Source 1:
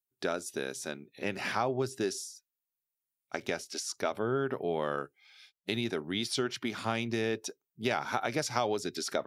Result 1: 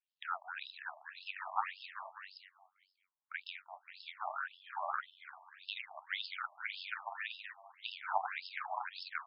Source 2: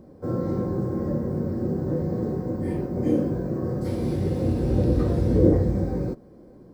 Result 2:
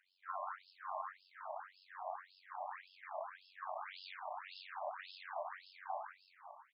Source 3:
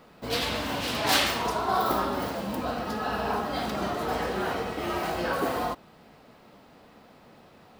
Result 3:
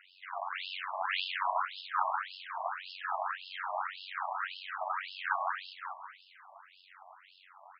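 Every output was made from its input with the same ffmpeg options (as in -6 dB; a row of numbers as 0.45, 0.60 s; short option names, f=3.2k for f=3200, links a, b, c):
-filter_complex "[0:a]flanger=delay=2.8:depth=9.8:regen=73:speed=0.34:shape=sinusoidal,highpass=f=610:w=0.5412,highpass=f=610:w=1.3066,asplit=2[a][b];[b]acompressor=threshold=-48dB:ratio=6,volume=3dB[c];[a][c]amix=inputs=2:normalize=0,tremolo=f=93:d=0.919,acrossover=split=2700[d][e];[e]acompressor=threshold=-47dB:ratio=4:attack=1:release=60[f];[d][f]amix=inputs=2:normalize=0,asplit=2[g][h];[h]asplit=5[i][j][k][l][m];[i]adelay=195,afreqshift=120,volume=-7.5dB[n];[j]adelay=390,afreqshift=240,volume=-14.8dB[o];[k]adelay=585,afreqshift=360,volume=-22.2dB[p];[l]adelay=780,afreqshift=480,volume=-29.5dB[q];[m]adelay=975,afreqshift=600,volume=-36.8dB[r];[n][o][p][q][r]amix=inputs=5:normalize=0[s];[g][s]amix=inputs=2:normalize=0,afftfilt=real='re*between(b*sr/1024,820*pow(3800/820,0.5+0.5*sin(2*PI*1.8*pts/sr))/1.41,820*pow(3800/820,0.5+0.5*sin(2*PI*1.8*pts/sr))*1.41)':imag='im*between(b*sr/1024,820*pow(3800/820,0.5+0.5*sin(2*PI*1.8*pts/sr))/1.41,820*pow(3800/820,0.5+0.5*sin(2*PI*1.8*pts/sr))*1.41)':win_size=1024:overlap=0.75,volume=6dB"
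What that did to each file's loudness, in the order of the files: -8.5, -22.0, -8.0 LU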